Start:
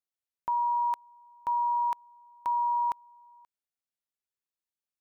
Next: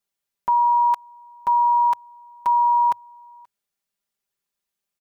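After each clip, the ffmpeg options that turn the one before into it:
-af "equalizer=f=110:w=4.8:g=11.5,aecho=1:1:5:0.97,volume=6.5dB"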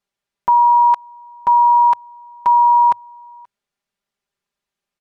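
-af "aemphasis=mode=reproduction:type=50fm,volume=6dB"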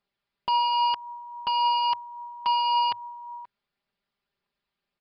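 -af "aresample=11025,asoftclip=type=tanh:threshold=-22.5dB,aresample=44100,aphaser=in_gain=1:out_gain=1:delay=1:decay=0.21:speed=1.8:type=triangular"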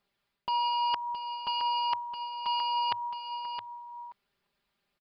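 -af "areverse,acompressor=threshold=-33dB:ratio=6,areverse,aecho=1:1:667:0.376,volume=4.5dB"

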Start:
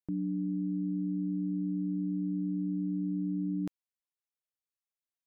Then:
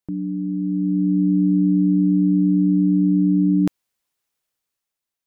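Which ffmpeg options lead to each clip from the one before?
-af "dynaudnorm=f=200:g=9:m=9dB,volume=7dB"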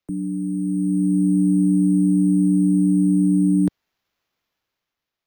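-filter_complex "[0:a]acrusher=samples=5:mix=1:aa=0.000001,acrossover=split=120|280|390[a][b][c][d];[d]asoftclip=type=tanh:threshold=-29.5dB[e];[a][b][c][e]amix=inputs=4:normalize=0"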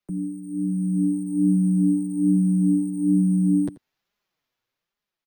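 -af "flanger=delay=4.8:depth=3.6:regen=3:speed=1.2:shape=sinusoidal,aecho=1:1:85:0.119"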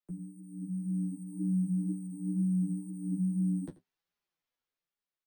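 -filter_complex "[0:a]flanger=delay=9.6:depth=5.2:regen=-37:speed=2:shape=sinusoidal,asplit=2[a][b];[b]adelay=12,volume=-3dB[c];[a][c]amix=inputs=2:normalize=0,volume=-8.5dB"

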